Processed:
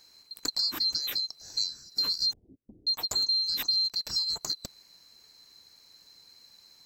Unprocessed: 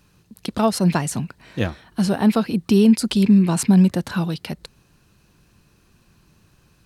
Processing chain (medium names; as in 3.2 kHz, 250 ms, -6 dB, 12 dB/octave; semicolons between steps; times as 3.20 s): split-band scrambler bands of 4 kHz; compression 5:1, threshold -27 dBFS, peak gain reduction 15.5 dB; 2.33–2.87 s: Gaussian low-pass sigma 21 samples